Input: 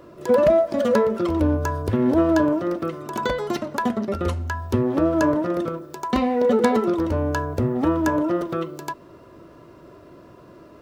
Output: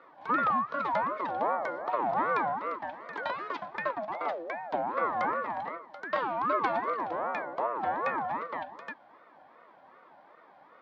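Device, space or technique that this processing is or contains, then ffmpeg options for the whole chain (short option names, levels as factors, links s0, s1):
voice changer toy: -af "aeval=exprs='val(0)*sin(2*PI*630*n/s+630*0.35/2.6*sin(2*PI*2.6*n/s))':c=same,highpass=400,equalizer=f=410:t=q:w=4:g=-6,equalizer=f=630:t=q:w=4:g=3,equalizer=f=2800:t=q:w=4:g=-3,lowpass=f=3900:w=0.5412,lowpass=f=3900:w=1.3066,volume=0.531"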